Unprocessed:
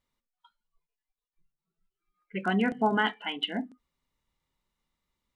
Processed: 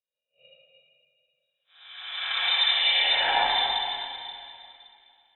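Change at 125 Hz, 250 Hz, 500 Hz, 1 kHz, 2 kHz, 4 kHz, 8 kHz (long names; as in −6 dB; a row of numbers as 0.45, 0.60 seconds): below −15 dB, below −20 dB, −4.0 dB, +4.5 dB, +6.0 dB, +15.5 dB, can't be measured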